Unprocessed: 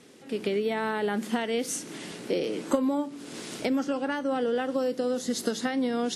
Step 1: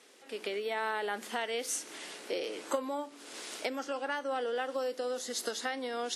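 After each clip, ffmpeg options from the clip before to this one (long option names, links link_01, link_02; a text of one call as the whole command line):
ffmpeg -i in.wav -af "highpass=560,volume=-2dB" out.wav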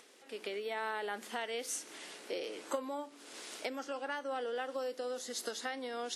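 ffmpeg -i in.wav -af "acompressor=mode=upward:threshold=-52dB:ratio=2.5,volume=-4dB" out.wav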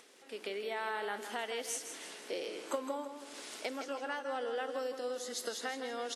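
ffmpeg -i in.wav -af "aecho=1:1:162|324|486|648|810:0.355|0.153|0.0656|0.0282|0.0121" out.wav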